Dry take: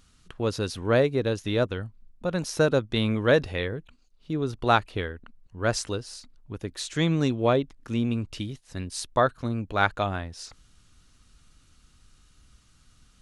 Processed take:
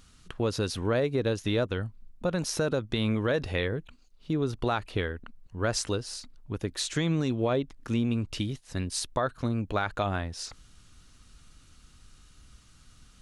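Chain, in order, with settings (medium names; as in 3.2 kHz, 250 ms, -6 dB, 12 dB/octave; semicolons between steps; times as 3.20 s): peak limiter -16 dBFS, peak gain reduction 9 dB; compression 2:1, threshold -29 dBFS, peak gain reduction 5 dB; trim +3 dB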